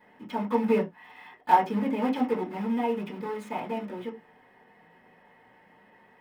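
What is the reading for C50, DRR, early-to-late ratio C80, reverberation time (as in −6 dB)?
13.5 dB, −6.5 dB, 20.5 dB, non-exponential decay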